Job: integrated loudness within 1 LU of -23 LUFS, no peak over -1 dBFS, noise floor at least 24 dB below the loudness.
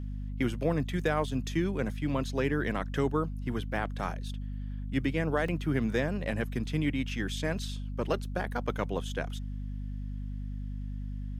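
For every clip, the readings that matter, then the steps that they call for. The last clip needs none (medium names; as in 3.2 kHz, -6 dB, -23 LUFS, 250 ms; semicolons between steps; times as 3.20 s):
dropouts 1; longest dropout 4.5 ms; hum 50 Hz; highest harmonic 250 Hz; hum level -34 dBFS; loudness -32.5 LUFS; peak level -15.0 dBFS; loudness target -23.0 LUFS
-> interpolate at 5.48 s, 4.5 ms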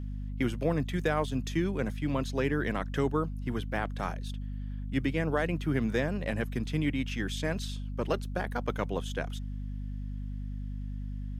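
dropouts 0; hum 50 Hz; highest harmonic 250 Hz; hum level -34 dBFS
-> hum notches 50/100/150/200/250 Hz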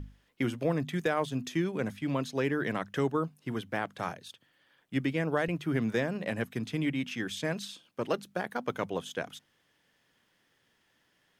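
hum not found; loudness -33.0 LUFS; peak level -16.0 dBFS; loudness target -23.0 LUFS
-> trim +10 dB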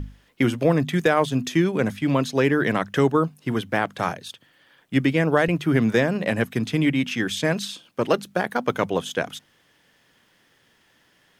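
loudness -23.0 LUFS; peak level -6.0 dBFS; noise floor -62 dBFS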